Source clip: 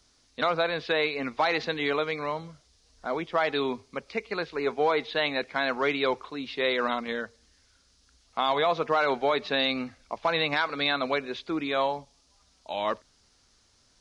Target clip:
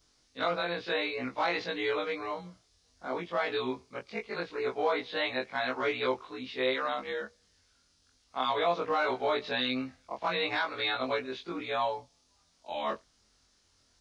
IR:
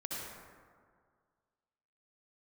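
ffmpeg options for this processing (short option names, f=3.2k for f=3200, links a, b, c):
-af "afftfilt=real='re':imag='-im':win_size=2048:overlap=0.75"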